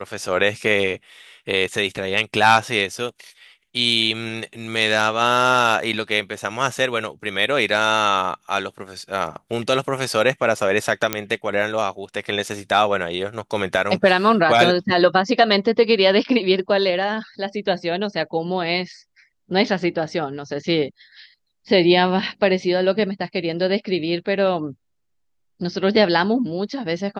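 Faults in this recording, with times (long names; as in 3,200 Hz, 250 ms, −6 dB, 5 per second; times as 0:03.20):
0:11.13: click −3 dBFS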